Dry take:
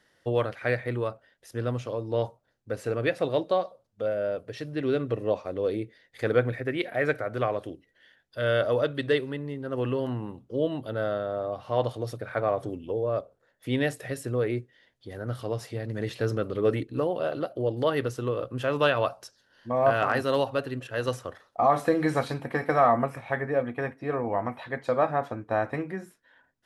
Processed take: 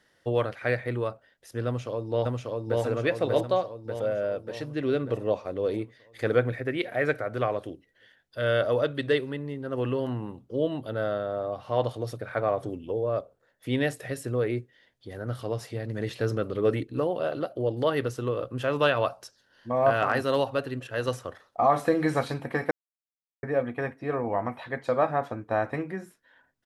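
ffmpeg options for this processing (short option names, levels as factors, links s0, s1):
-filter_complex "[0:a]asplit=2[s0][s1];[s1]afade=t=in:st=1.66:d=0.01,afade=t=out:st=2.81:d=0.01,aecho=0:1:590|1180|1770|2360|2950|3540|4130|4720|5310:0.944061|0.566437|0.339862|0.203917|0.12235|0.0734102|0.0440461|0.0264277|0.0158566[s2];[s0][s2]amix=inputs=2:normalize=0,asplit=3[s3][s4][s5];[s3]atrim=end=22.71,asetpts=PTS-STARTPTS,afade=t=out:st=22.706:d=0.004:c=hsin[s6];[s4]atrim=start=22.71:end=23.43,asetpts=PTS-STARTPTS,volume=0[s7];[s5]atrim=start=23.43,asetpts=PTS-STARTPTS,afade=t=in:d=0.004:c=hsin[s8];[s6][s7][s8]concat=n=3:v=0:a=1"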